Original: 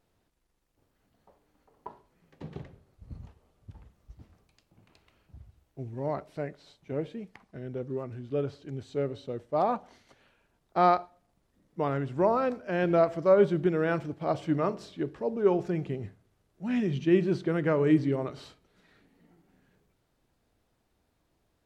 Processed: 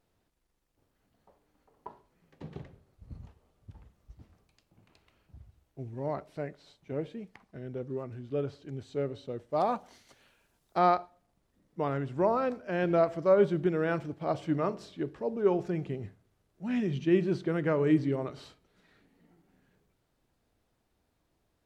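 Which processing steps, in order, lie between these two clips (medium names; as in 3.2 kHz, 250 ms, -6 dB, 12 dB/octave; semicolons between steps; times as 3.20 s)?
9.50–10.78 s: treble shelf 4.7 kHz -> 3.5 kHz +11 dB; trim -2 dB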